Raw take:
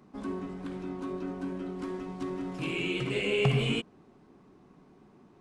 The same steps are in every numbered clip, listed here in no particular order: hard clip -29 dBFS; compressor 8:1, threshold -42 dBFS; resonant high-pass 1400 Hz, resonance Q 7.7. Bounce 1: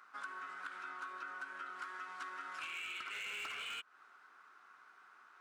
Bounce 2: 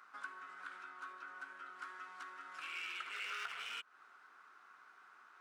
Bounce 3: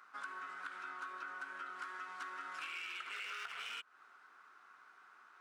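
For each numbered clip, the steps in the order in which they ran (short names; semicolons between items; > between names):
resonant high-pass > hard clip > compressor; hard clip > compressor > resonant high-pass; hard clip > resonant high-pass > compressor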